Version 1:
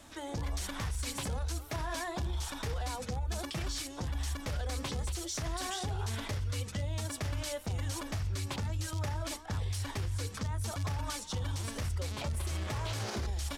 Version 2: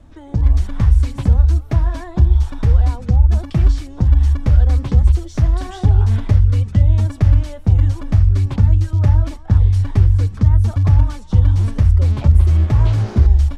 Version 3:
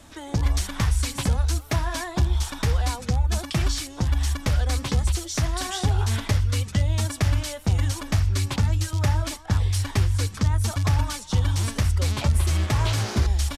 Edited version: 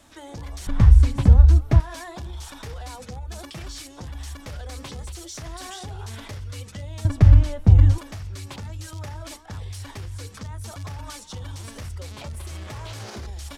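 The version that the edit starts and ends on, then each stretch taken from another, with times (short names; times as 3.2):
1
0.67–1.8 from 2
7.05–7.98 from 2
not used: 3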